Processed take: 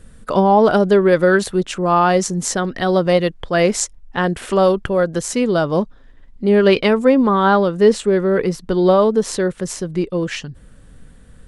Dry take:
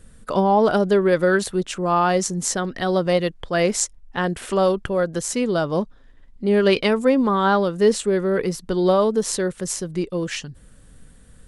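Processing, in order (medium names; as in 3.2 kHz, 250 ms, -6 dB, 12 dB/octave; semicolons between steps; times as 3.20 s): treble shelf 5.4 kHz -5 dB, from 6.51 s -10 dB; trim +4.5 dB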